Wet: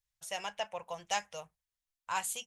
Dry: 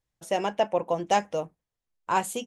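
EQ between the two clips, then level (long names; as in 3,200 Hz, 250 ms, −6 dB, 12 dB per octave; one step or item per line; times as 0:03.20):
guitar amp tone stack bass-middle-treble 10-0-10
0.0 dB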